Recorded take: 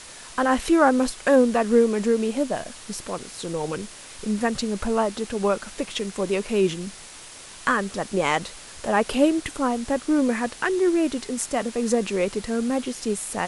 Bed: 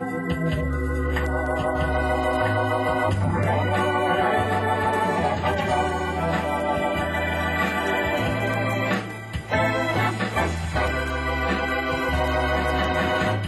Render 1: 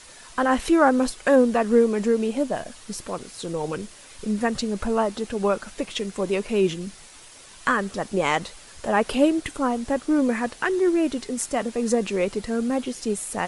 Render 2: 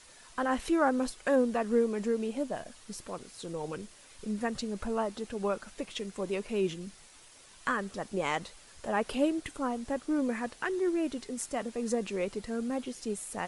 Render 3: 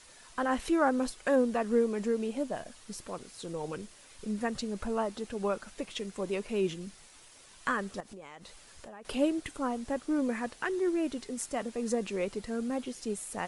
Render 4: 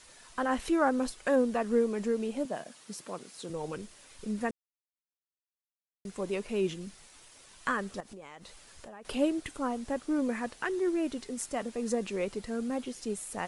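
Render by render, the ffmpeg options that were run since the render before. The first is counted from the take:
ffmpeg -i in.wav -af "afftdn=noise_reduction=6:noise_floor=-43" out.wav
ffmpeg -i in.wav -af "volume=-9dB" out.wav
ffmpeg -i in.wav -filter_complex "[0:a]asettb=1/sr,asplit=3[link_01][link_02][link_03];[link_01]atrim=end=8.004[link_04];[link_02]atrim=start=8:end=9.05,asetpts=PTS-STARTPTS,afade=type=in:duration=0.004:curve=qsin,afade=type=out:start_time=1.046:duration=0.004:curve=qsin,acompressor=threshold=-43dB:ratio=12:attack=3.2:release=140:knee=1:detection=peak[link_05];[link_03]atrim=start=9.046[link_06];[link_04][link_05]acrossfade=duration=0.004:curve1=hsin:curve2=qsin[link_07];[link_07][link_06]acrossfade=duration=0.004:curve1=qsin:curve2=hsin" out.wav
ffmpeg -i in.wav -filter_complex "[0:a]asettb=1/sr,asplit=3[link_01][link_02][link_03];[link_01]atrim=end=2.454[link_04];[link_02]atrim=start=2.45:end=3.5,asetpts=PTS-STARTPTS,afade=type=in:duration=0.004:curve=qsin,afade=type=out:start_time=1.046:duration=0.004:curve=qsin,highpass=frequency=140:width=0.5412,highpass=frequency=140:width=1.3066[link_05];[link_03]atrim=start=3.496[link_06];[link_04][link_05]acrossfade=duration=0.004:curve1=hsin:curve2=qsin[link_07];[link_07][link_06]acrossfade=duration=0.004:curve1=qsin:curve2=hsin,asplit=3[link_08][link_09][link_10];[link_08]atrim=end=4.51,asetpts=PTS-STARTPTS,afade=type=out:start_time=4.506:duration=0.004:curve=hsin[link_11];[link_09]atrim=start=4.51:end=6.05,asetpts=PTS-STARTPTS,volume=0[link_12];[link_10]atrim=start=6.05,asetpts=PTS-STARTPTS,afade=type=in:duration=0.004:curve=hsin[link_13];[link_11][link_12][link_13]concat=n=3:v=0:a=1" out.wav

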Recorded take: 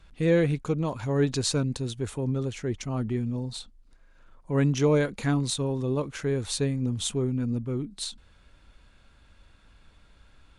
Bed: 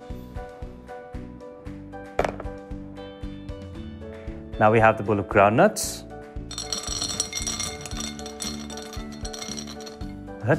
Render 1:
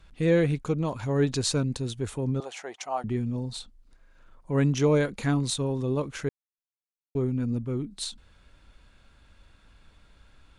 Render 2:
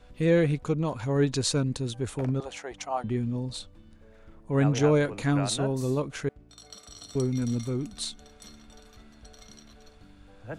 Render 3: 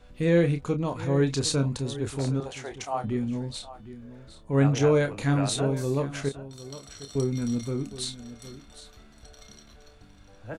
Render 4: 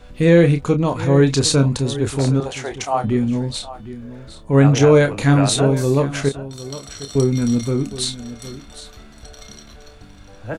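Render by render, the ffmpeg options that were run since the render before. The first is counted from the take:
ffmpeg -i in.wav -filter_complex "[0:a]asettb=1/sr,asplit=3[link_01][link_02][link_03];[link_01]atrim=end=2.404[link_04];[link_02]atrim=start=2.4:end=3.04,asetpts=PTS-STARTPTS,afade=type=in:duration=0.004:curve=qsin,afade=type=out:start_time=0.636:duration=0.004:curve=qsin,highpass=frequency=750:width_type=q:width=4.6[link_05];[link_03]atrim=start=3.036[link_06];[link_04][link_05]acrossfade=duration=0.004:curve1=hsin:curve2=qsin[link_07];[link_07][link_06]acrossfade=duration=0.004:curve1=qsin:curve2=hsin,asplit=3[link_08][link_09][link_10];[link_08]atrim=end=6.29,asetpts=PTS-STARTPTS,afade=type=out:start_time=6.286:duration=0.004:curve=hsin[link_11];[link_09]atrim=start=6.29:end=7.15,asetpts=PTS-STARTPTS,volume=0[link_12];[link_10]atrim=start=7.15,asetpts=PTS-STARTPTS,afade=type=in:duration=0.004:curve=hsin[link_13];[link_11][link_12][link_13]concat=n=3:v=0:a=1" out.wav
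ffmpeg -i in.wav -i bed.wav -filter_complex "[1:a]volume=-18dB[link_01];[0:a][link_01]amix=inputs=2:normalize=0" out.wav
ffmpeg -i in.wav -filter_complex "[0:a]asplit=2[link_01][link_02];[link_02]adelay=29,volume=-8.5dB[link_03];[link_01][link_03]amix=inputs=2:normalize=0,aecho=1:1:760:0.178" out.wav
ffmpeg -i in.wav -af "volume=10dB,alimiter=limit=-3dB:level=0:latency=1" out.wav

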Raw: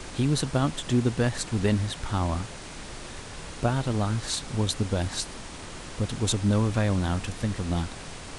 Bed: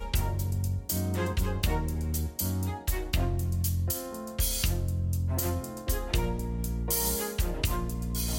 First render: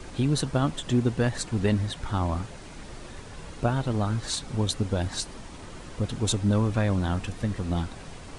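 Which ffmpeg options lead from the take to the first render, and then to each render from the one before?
ffmpeg -i in.wav -af "afftdn=noise_reduction=7:noise_floor=-41" out.wav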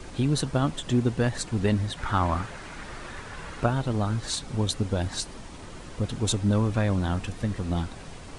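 ffmpeg -i in.wav -filter_complex "[0:a]asplit=3[link_01][link_02][link_03];[link_01]afade=type=out:start_time=1.97:duration=0.02[link_04];[link_02]equalizer=frequency=1500:width=0.82:gain=9.5,afade=type=in:start_time=1.97:duration=0.02,afade=type=out:start_time=3.65:duration=0.02[link_05];[link_03]afade=type=in:start_time=3.65:duration=0.02[link_06];[link_04][link_05][link_06]amix=inputs=3:normalize=0" out.wav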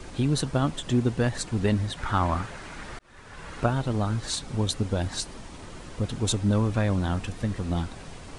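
ffmpeg -i in.wav -filter_complex "[0:a]asplit=2[link_01][link_02];[link_01]atrim=end=2.99,asetpts=PTS-STARTPTS,afade=type=out:start_time=2.986:duration=0.004:curve=hsin[link_03];[link_02]atrim=start=2.99,asetpts=PTS-STARTPTS,afade=type=in:duration=0.59[link_04];[link_03][link_04]concat=n=2:v=0:a=1" out.wav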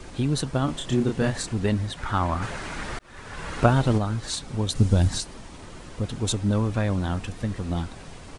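ffmpeg -i in.wav -filter_complex "[0:a]asplit=3[link_01][link_02][link_03];[link_01]afade=type=out:start_time=0.67:duration=0.02[link_04];[link_02]asplit=2[link_05][link_06];[link_06]adelay=30,volume=-3dB[link_07];[link_05][link_07]amix=inputs=2:normalize=0,afade=type=in:start_time=0.67:duration=0.02,afade=type=out:start_time=1.52:duration=0.02[link_08];[link_03]afade=type=in:start_time=1.52:duration=0.02[link_09];[link_04][link_08][link_09]amix=inputs=3:normalize=0,asplit=3[link_10][link_11][link_12];[link_10]afade=type=out:start_time=2.41:duration=0.02[link_13];[link_11]acontrast=65,afade=type=in:start_time=2.41:duration=0.02,afade=type=out:start_time=3.97:duration=0.02[link_14];[link_12]afade=type=in:start_time=3.97:duration=0.02[link_15];[link_13][link_14][link_15]amix=inputs=3:normalize=0,asettb=1/sr,asplit=3[link_16][link_17][link_18];[link_16]atrim=end=4.754[link_19];[link_17]atrim=start=4.75:end=5.18,asetpts=PTS-STARTPTS,afade=type=in:duration=0.004:curve=qsin,afade=type=out:start_time=0.426:duration=0.004:curve=qsin,bass=frequency=250:gain=10,treble=frequency=4000:gain=8[link_20];[link_18]atrim=start=5.176[link_21];[link_19][link_20]acrossfade=duration=0.004:curve1=hsin:curve2=qsin[link_22];[link_22][link_21]acrossfade=duration=0.004:curve1=qsin:curve2=hsin" out.wav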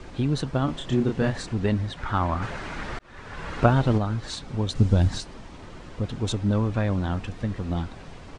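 ffmpeg -i in.wav -af "lowpass=7600,highshelf=frequency=5600:gain=-9" out.wav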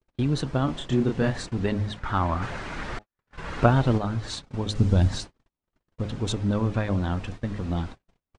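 ffmpeg -i in.wav -af "bandreject=frequency=105.2:width_type=h:width=4,bandreject=frequency=210.4:width_type=h:width=4,bandreject=frequency=315.6:width_type=h:width=4,bandreject=frequency=420.8:width_type=h:width=4,bandreject=frequency=526:width_type=h:width=4,bandreject=frequency=631.2:width_type=h:width=4,bandreject=frequency=736.4:width_type=h:width=4,bandreject=frequency=841.6:width_type=h:width=4,agate=range=-50dB:threshold=-35dB:ratio=16:detection=peak" out.wav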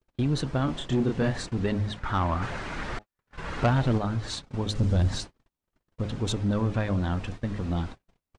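ffmpeg -i in.wav -af "asoftclip=type=tanh:threshold=-16.5dB" out.wav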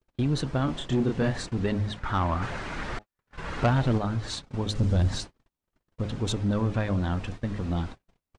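ffmpeg -i in.wav -af anull out.wav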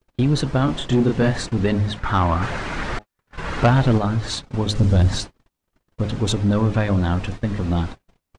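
ffmpeg -i in.wav -af "volume=7.5dB" out.wav

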